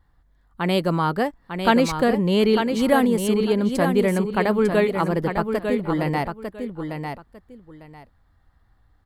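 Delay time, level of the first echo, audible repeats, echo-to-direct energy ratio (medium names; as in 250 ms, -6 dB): 900 ms, -6.5 dB, 2, -6.5 dB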